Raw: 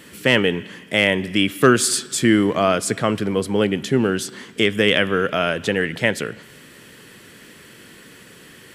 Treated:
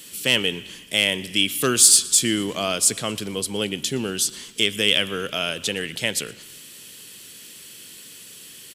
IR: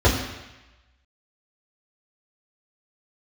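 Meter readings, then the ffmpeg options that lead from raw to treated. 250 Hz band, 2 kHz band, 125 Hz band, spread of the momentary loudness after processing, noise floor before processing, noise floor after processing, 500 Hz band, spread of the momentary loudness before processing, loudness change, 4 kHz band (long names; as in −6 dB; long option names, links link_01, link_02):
−8.5 dB, −5.0 dB, −8.5 dB, 25 LU, −45 dBFS, −43 dBFS, −8.5 dB, 6 LU, −1.0 dB, +3.5 dB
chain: -filter_complex "[0:a]asplit=5[link_01][link_02][link_03][link_04][link_05];[link_02]adelay=117,afreqshift=-60,volume=-24dB[link_06];[link_03]adelay=234,afreqshift=-120,volume=-29dB[link_07];[link_04]adelay=351,afreqshift=-180,volume=-34.1dB[link_08];[link_05]adelay=468,afreqshift=-240,volume=-39.1dB[link_09];[link_01][link_06][link_07][link_08][link_09]amix=inputs=5:normalize=0,aexciter=amount=5.2:drive=4.8:freq=2600,volume=-8.5dB"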